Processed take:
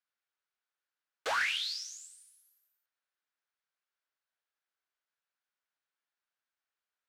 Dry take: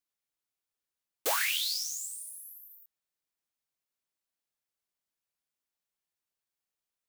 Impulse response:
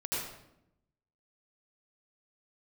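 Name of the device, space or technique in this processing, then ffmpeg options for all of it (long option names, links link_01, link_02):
intercom: -af "highpass=470,lowpass=4200,equalizer=frequency=1500:width_type=o:width=0.57:gain=8,asoftclip=type=tanh:threshold=-24dB"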